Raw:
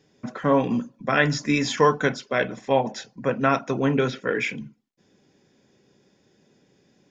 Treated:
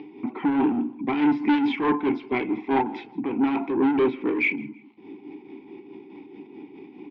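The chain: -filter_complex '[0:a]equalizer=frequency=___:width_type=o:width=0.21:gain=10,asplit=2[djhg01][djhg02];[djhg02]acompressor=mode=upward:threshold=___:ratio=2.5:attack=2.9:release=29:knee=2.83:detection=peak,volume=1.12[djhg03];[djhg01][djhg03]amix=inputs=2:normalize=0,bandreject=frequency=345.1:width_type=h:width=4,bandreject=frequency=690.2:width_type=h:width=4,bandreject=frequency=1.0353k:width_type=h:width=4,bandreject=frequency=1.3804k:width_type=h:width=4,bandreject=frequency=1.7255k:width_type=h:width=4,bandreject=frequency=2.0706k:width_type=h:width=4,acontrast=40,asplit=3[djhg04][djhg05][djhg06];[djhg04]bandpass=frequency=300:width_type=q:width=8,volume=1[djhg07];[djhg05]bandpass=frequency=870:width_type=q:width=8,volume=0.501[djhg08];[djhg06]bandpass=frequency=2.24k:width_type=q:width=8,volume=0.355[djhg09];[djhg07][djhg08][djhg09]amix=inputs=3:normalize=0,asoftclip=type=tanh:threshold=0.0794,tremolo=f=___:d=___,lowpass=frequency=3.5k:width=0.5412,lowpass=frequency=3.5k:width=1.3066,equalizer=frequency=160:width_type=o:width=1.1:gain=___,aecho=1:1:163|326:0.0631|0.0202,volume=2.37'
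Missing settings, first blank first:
390, 0.0316, 4.7, 0.53, -4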